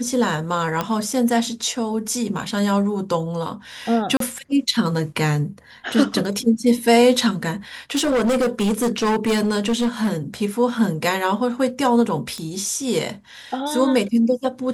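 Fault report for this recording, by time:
0:00.81: click −8 dBFS
0:04.17–0:04.20: drop-out 33 ms
0:07.92–0:10.13: clipping −15.5 dBFS
0:12.38: click −18 dBFS

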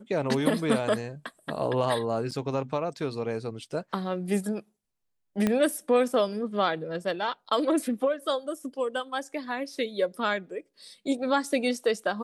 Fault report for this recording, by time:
0:02.31–0:02.32: drop-out 6.7 ms
0:05.47: click −12 dBFS

